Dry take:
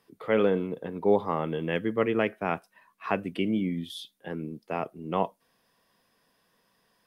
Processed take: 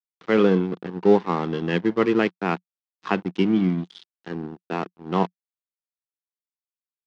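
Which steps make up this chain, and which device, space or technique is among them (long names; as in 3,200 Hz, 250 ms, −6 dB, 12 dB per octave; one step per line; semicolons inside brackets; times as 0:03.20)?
blown loudspeaker (dead-zone distortion −37.5 dBFS; loudspeaker in its box 140–5,700 Hz, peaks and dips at 180 Hz +8 dB, 350 Hz +5 dB, 590 Hz −9 dB, 2,300 Hz −3 dB)
level +6.5 dB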